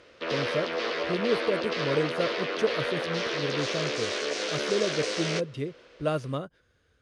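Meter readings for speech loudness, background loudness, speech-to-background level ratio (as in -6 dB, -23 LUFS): -32.0 LUFS, -30.0 LUFS, -2.0 dB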